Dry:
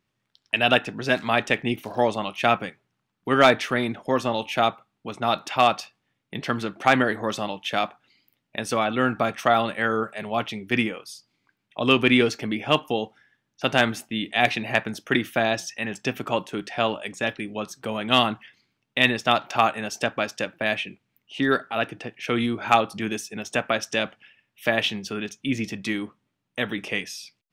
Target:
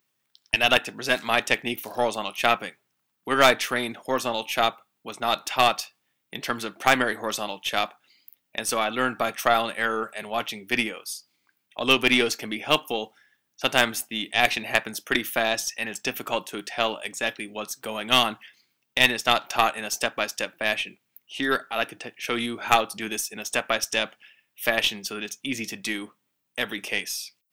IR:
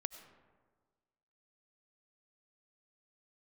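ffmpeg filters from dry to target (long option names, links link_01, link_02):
-af "aemphasis=mode=production:type=bsi,aeval=exprs='1*(cos(1*acos(clip(val(0)/1,-1,1)))-cos(1*PI/2))+0.1*(cos(4*acos(clip(val(0)/1,-1,1)))-cos(4*PI/2))':channel_layout=same,volume=-1.5dB"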